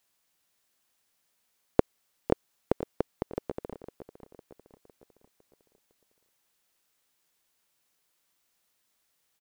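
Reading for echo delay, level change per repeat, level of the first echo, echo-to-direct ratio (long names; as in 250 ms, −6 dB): 506 ms, −6.5 dB, −13.0 dB, −12.0 dB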